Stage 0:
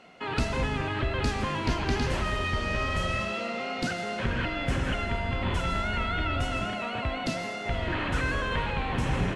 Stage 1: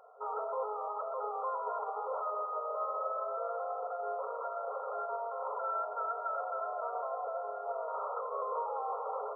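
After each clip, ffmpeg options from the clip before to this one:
ffmpeg -i in.wav -af "afftfilt=real='re*between(b*sr/4096,410,1400)':imag='im*between(b*sr/4096,410,1400)':win_size=4096:overlap=0.75,volume=-1.5dB" out.wav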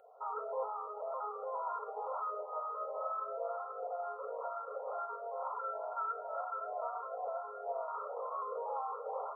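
ffmpeg -i in.wav -filter_complex "[0:a]asplit=2[link_01][link_02];[link_02]afreqshift=2.1[link_03];[link_01][link_03]amix=inputs=2:normalize=1" out.wav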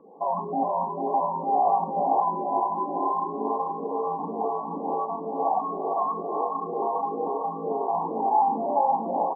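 ffmpeg -i in.wav -filter_complex "[0:a]afreqshift=-250,lowpass=frequency=840:width_type=q:width=5.7,asplit=2[link_01][link_02];[link_02]aecho=0:1:444|888|1332|1776|2220|2664|3108:0.501|0.271|0.146|0.0789|0.0426|0.023|0.0124[link_03];[link_01][link_03]amix=inputs=2:normalize=0,volume=5.5dB" out.wav

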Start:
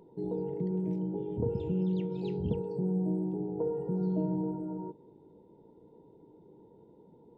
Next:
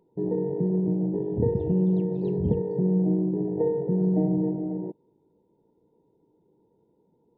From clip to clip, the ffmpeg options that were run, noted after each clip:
ffmpeg -i in.wav -af "afwtdn=0.02,volume=7.5dB" out.wav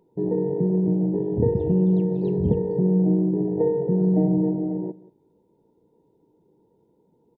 ffmpeg -i in.wav -af "aecho=1:1:183:0.106,volume=3dB" out.wav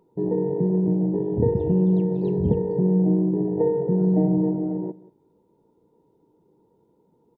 ffmpeg -i in.wav -af "equalizer=frequency=1200:width=3.2:gain=9.5" out.wav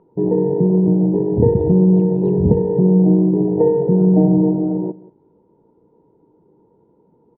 ffmpeg -i in.wav -af "lowpass=1500,volume=7dB" out.wav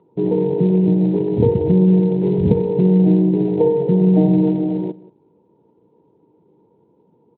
ffmpeg -i in.wav -af "volume=-1dB" -ar 32000 -c:a libspeex -b:a 36k out.spx

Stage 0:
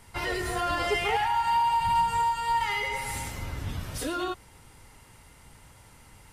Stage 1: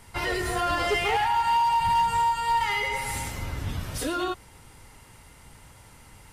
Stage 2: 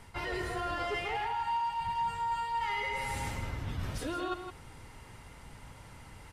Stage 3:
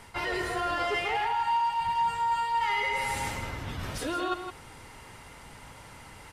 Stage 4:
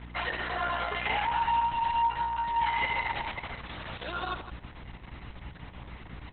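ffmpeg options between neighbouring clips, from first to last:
ffmpeg -i in.wav -af "asoftclip=type=hard:threshold=-21.5dB,volume=2.5dB" out.wav
ffmpeg -i in.wav -filter_complex "[0:a]lowpass=frequency=4000:poles=1,areverse,acompressor=threshold=-33dB:ratio=6,areverse,asplit=2[link_01][link_02];[link_02]adelay=163.3,volume=-8dB,highshelf=frequency=4000:gain=-3.67[link_03];[link_01][link_03]amix=inputs=2:normalize=0" out.wav
ffmpeg -i in.wav -af "lowshelf=frequency=210:gain=-8.5,volume=6dB" out.wav
ffmpeg -i in.wav -af "highpass=frequency=520:width=0.5412,highpass=frequency=520:width=1.3066,aeval=exprs='val(0)+0.00891*(sin(2*PI*60*n/s)+sin(2*PI*2*60*n/s)/2+sin(2*PI*3*60*n/s)/3+sin(2*PI*4*60*n/s)/4+sin(2*PI*5*60*n/s)/5)':channel_layout=same" -ar 48000 -c:a libopus -b:a 6k out.opus

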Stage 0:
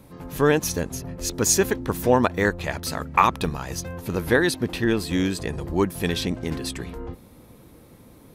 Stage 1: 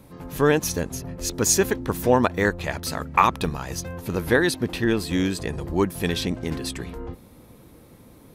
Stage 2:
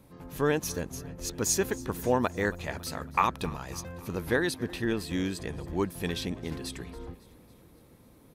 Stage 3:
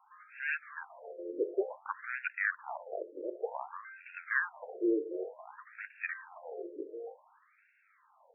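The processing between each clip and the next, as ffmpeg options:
ffmpeg -i in.wav -af anull out.wav
ffmpeg -i in.wav -af "aecho=1:1:277|554|831|1108|1385:0.0944|0.0548|0.0318|0.0184|0.0107,volume=-7.5dB" out.wav
ffmpeg -i in.wav -af "asoftclip=type=hard:threshold=-23.5dB,bandreject=frequency=45.21:width_type=h:width=4,bandreject=frequency=90.42:width_type=h:width=4,bandreject=frequency=135.63:width_type=h:width=4,bandreject=frequency=180.84:width_type=h:width=4,bandreject=frequency=226.05:width_type=h:width=4,bandreject=frequency=271.26:width_type=h:width=4,bandreject=frequency=316.47:width_type=h:width=4,bandreject=frequency=361.68:width_type=h:width=4,bandreject=frequency=406.89:width_type=h:width=4,bandreject=frequency=452.1:width_type=h:width=4,bandreject=frequency=497.31:width_type=h:width=4,bandreject=frequency=542.52:width_type=h:width=4,bandreject=frequency=587.73:width_type=h:width=4,afftfilt=real='re*between(b*sr/1024,420*pow(2000/420,0.5+0.5*sin(2*PI*0.55*pts/sr))/1.41,420*pow(2000/420,0.5+0.5*sin(2*PI*0.55*pts/sr))*1.41)':imag='im*between(b*sr/1024,420*pow(2000/420,0.5+0.5*sin(2*PI*0.55*pts/sr))/1.41,420*pow(2000/420,0.5+0.5*sin(2*PI*0.55*pts/sr))*1.41)':win_size=1024:overlap=0.75,volume=5dB" out.wav

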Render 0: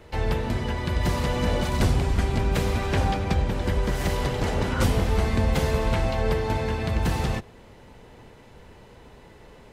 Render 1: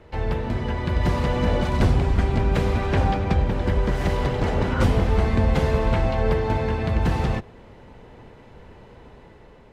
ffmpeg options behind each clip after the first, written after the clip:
ffmpeg -i in.wav -af "lowpass=frequency=2300:poles=1,dynaudnorm=framelen=250:gausssize=5:maxgain=3dB" out.wav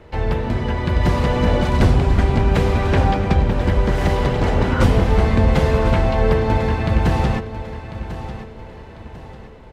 ffmpeg -i in.wav -af "aecho=1:1:1046|2092|3138|4184:0.237|0.0877|0.0325|0.012,volume=4.5dB" out.wav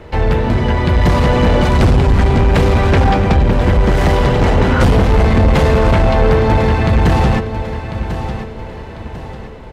ffmpeg -i in.wav -af "asoftclip=type=tanh:threshold=-14dB,volume=8.5dB" out.wav

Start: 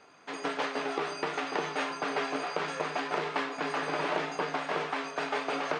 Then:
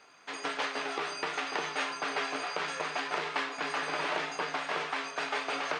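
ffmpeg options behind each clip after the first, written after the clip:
ffmpeg -i in.wav -af "tiltshelf=frequency=870:gain=-5,volume=-2dB" out.wav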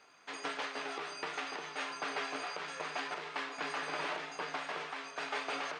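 ffmpeg -i in.wav -af "alimiter=limit=-21.5dB:level=0:latency=1:release=463,volume=-4dB" out.wav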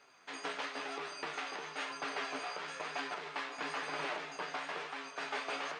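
ffmpeg -i in.wav -af "flanger=delay=7:depth=9.6:regen=50:speed=1:shape=sinusoidal,volume=3dB" out.wav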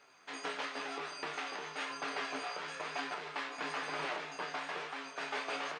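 ffmpeg -i in.wav -filter_complex "[0:a]asplit=2[link_01][link_02];[link_02]adelay=26,volume=-10.5dB[link_03];[link_01][link_03]amix=inputs=2:normalize=0" out.wav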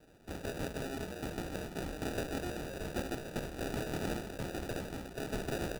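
ffmpeg -i in.wav -af "acrusher=samples=41:mix=1:aa=0.000001,volume=1.5dB" out.wav

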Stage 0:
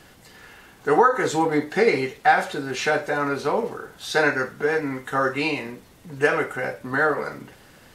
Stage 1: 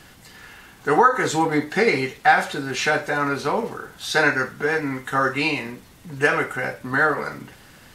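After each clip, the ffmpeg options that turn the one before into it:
ffmpeg -i in.wav -af "equalizer=frequency=490:width=1:gain=-5,volume=3.5dB" out.wav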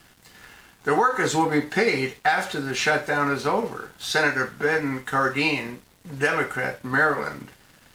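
ffmpeg -i in.wav -filter_complex "[0:a]acrossover=split=2900[link_01][link_02];[link_01]alimiter=limit=-10.5dB:level=0:latency=1:release=180[link_03];[link_03][link_02]amix=inputs=2:normalize=0,aeval=exprs='sgn(val(0))*max(abs(val(0))-0.00335,0)':channel_layout=same" out.wav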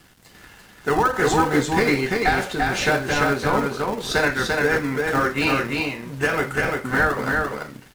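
ffmpeg -i in.wav -filter_complex "[0:a]asplit=2[link_01][link_02];[link_02]acrusher=samples=41:mix=1:aa=0.000001:lfo=1:lforange=41:lforate=2.3,volume=-9dB[link_03];[link_01][link_03]amix=inputs=2:normalize=0,aecho=1:1:343:0.708" out.wav

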